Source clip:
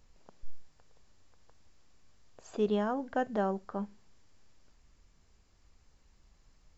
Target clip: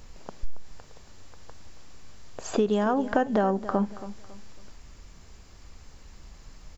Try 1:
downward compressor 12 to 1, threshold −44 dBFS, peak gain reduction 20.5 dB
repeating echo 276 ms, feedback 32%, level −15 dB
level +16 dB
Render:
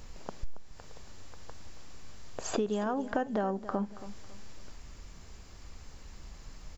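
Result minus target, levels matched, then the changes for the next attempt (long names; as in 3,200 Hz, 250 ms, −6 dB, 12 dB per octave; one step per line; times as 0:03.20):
downward compressor: peak gain reduction +7.5 dB
change: downward compressor 12 to 1, threshold −36 dBFS, peak gain reduction 13 dB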